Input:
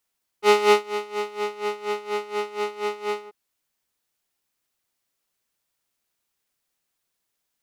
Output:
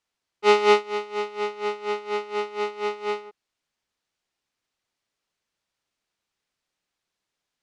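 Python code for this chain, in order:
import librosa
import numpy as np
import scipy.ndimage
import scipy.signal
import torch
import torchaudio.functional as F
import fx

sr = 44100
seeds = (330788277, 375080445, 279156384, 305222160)

y = scipy.signal.sosfilt(scipy.signal.butter(2, 5800.0, 'lowpass', fs=sr, output='sos'), x)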